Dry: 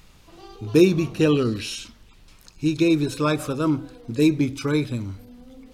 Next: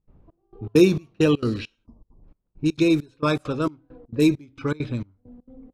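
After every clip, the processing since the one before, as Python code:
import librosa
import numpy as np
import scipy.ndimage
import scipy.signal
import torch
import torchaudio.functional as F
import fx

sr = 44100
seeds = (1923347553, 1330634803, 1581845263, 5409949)

y = fx.spec_erase(x, sr, start_s=1.86, length_s=0.38, low_hz=1200.0, high_hz=4600.0)
y = fx.step_gate(y, sr, bpm=200, pattern='.xxx...xx', floor_db=-24.0, edge_ms=4.5)
y = fx.env_lowpass(y, sr, base_hz=530.0, full_db=-18.5)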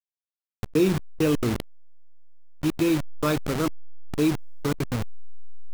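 y = fx.delta_hold(x, sr, step_db=-23.5)
y = fx.env_flatten(y, sr, amount_pct=50)
y = y * librosa.db_to_amplitude(-6.5)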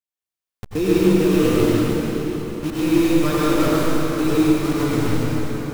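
y = fx.rev_plate(x, sr, seeds[0], rt60_s=4.8, hf_ratio=0.8, predelay_ms=75, drr_db=-9.5)
y = y * librosa.db_to_amplitude(-2.5)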